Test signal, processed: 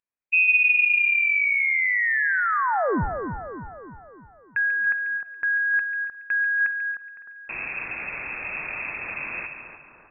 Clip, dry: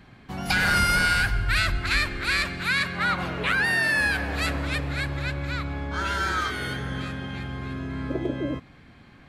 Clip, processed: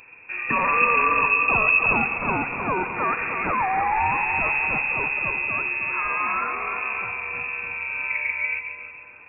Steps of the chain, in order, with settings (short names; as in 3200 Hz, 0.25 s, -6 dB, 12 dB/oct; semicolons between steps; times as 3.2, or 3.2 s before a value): HPF 57 Hz 12 dB/oct; low shelf 79 Hz +11.5 dB; careless resampling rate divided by 8×, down filtered, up zero stuff; on a send: split-band echo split 940 Hz, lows 0.14 s, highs 0.306 s, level -7.5 dB; on the sum: spring tank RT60 1.4 s, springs 47 ms, chirp 75 ms, DRR 17.5 dB; inverted band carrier 2600 Hz